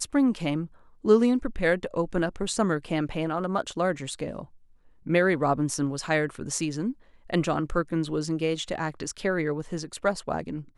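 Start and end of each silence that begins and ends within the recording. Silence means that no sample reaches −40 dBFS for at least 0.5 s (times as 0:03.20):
0:04.44–0:05.06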